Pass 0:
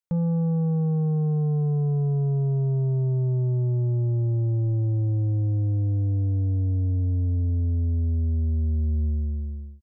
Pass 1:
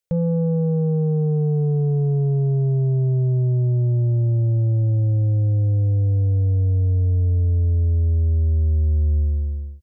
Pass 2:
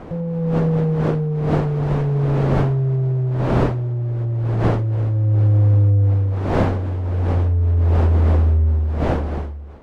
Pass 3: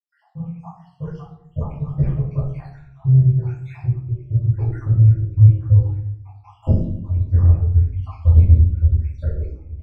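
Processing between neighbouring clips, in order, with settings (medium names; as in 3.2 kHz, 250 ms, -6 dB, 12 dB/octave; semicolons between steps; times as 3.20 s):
ten-band graphic EQ 125 Hz +3 dB, 250 Hz -12 dB, 500 Hz +9 dB, 1 kHz -11 dB; peak limiter -21.5 dBFS, peak gain reduction 3 dB; trim +7 dB
wind noise 510 Hz -23 dBFS; level rider gain up to 13 dB; trim -5.5 dB
random holes in the spectrogram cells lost 81%; phase shifter stages 12, 1.7 Hz, lowest notch 180–1300 Hz; reverberation RT60 0.75 s, pre-delay 77 ms; trim -3.5 dB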